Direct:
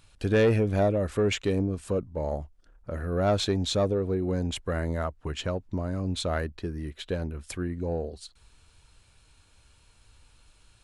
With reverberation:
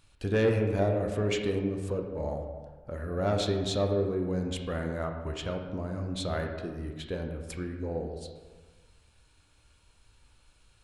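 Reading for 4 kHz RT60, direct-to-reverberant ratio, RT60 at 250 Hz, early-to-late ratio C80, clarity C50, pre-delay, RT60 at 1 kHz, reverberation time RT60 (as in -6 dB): 0.85 s, 3.0 dB, 1.5 s, 7.0 dB, 5.0 dB, 17 ms, 1.4 s, 1.4 s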